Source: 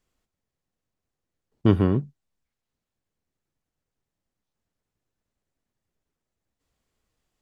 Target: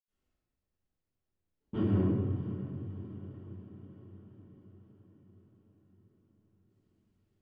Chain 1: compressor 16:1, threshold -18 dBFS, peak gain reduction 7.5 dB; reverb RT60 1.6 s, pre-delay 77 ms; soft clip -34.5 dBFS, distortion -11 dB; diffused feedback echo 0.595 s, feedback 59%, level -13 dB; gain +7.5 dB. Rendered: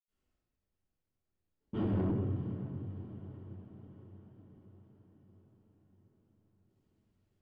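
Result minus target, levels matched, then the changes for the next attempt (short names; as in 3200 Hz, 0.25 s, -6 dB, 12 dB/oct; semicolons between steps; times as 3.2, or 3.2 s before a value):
soft clip: distortion +13 dB
change: soft clip -24 dBFS, distortion -24 dB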